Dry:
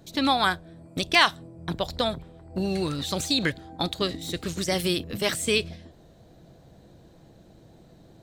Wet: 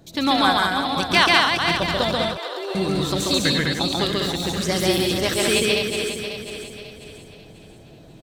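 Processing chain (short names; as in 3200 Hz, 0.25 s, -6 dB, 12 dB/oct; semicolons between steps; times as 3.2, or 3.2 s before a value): regenerating reverse delay 0.271 s, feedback 61%, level -6 dB; 2.17–2.75 rippled Chebyshev high-pass 300 Hz, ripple 3 dB; loudspeakers at several distances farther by 47 m -1 dB, 69 m -3 dB; gain +1.5 dB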